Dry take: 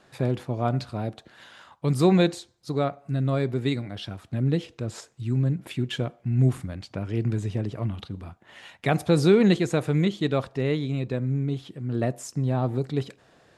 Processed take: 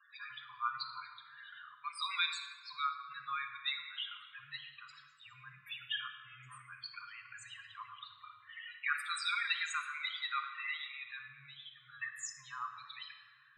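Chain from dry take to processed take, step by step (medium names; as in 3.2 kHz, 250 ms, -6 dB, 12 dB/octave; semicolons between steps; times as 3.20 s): 4.42–5.09 s: dead-time distortion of 0.088 ms; elliptic high-pass 1.1 kHz, stop band 40 dB; vibrato 0.71 Hz 29 cents; harmonic tremolo 9.1 Hz, depth 50%, crossover 1.8 kHz; loudest bins only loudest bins 16; simulated room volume 2100 m³, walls mixed, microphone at 1.3 m; trim +2.5 dB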